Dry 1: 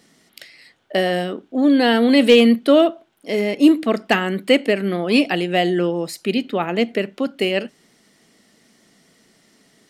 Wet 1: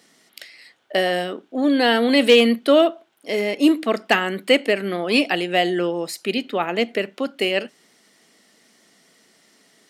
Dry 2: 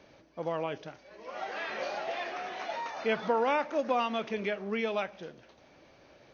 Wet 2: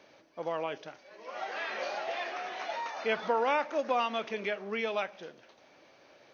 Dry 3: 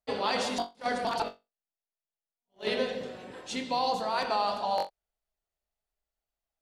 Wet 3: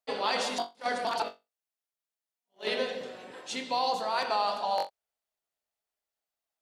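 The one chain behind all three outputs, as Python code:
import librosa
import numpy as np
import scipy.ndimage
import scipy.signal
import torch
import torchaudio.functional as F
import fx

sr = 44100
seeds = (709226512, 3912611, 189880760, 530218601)

y = fx.highpass(x, sr, hz=410.0, slope=6)
y = y * 10.0 ** (1.0 / 20.0)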